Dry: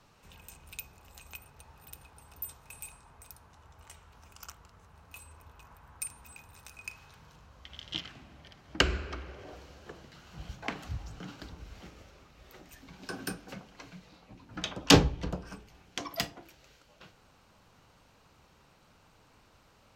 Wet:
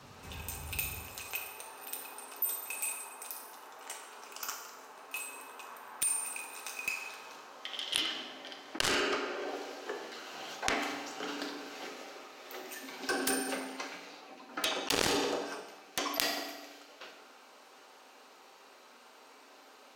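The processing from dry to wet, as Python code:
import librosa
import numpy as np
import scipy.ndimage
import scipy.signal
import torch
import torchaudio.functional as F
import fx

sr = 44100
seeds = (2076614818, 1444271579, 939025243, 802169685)

y = fx.highpass(x, sr, hz=fx.steps((0.0, 51.0), (1.02, 330.0)), slope=24)
y = fx.rev_fdn(y, sr, rt60_s=1.1, lf_ratio=1.2, hf_ratio=0.85, size_ms=23.0, drr_db=1.5)
y = fx.rider(y, sr, range_db=5, speed_s=2.0)
y = fx.cheby_harmonics(y, sr, harmonics=(3, 7), levels_db=(-12, -28), full_scale_db=0.0)
y = fx.env_flatten(y, sr, amount_pct=100)
y = F.gain(torch.from_numpy(y), -7.0).numpy()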